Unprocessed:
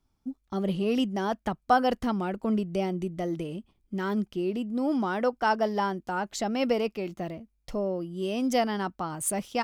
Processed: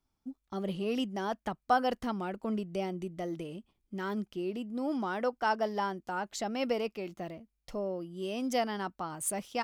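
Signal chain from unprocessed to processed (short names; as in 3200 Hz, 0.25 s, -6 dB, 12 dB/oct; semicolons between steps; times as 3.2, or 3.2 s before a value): low shelf 270 Hz -5 dB; gain -4 dB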